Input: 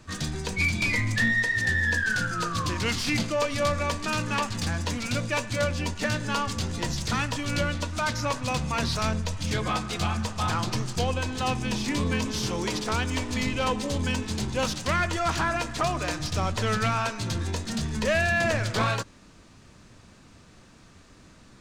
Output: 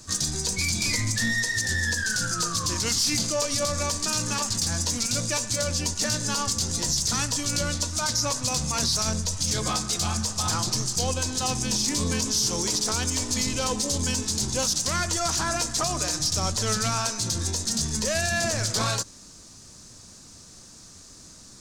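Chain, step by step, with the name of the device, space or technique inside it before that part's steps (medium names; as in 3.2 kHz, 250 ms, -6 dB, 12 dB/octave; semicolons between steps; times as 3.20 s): over-bright horn tweeter (resonant high shelf 3.9 kHz +13.5 dB, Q 1.5; peak limiter -15.5 dBFS, peak gain reduction 8.5 dB)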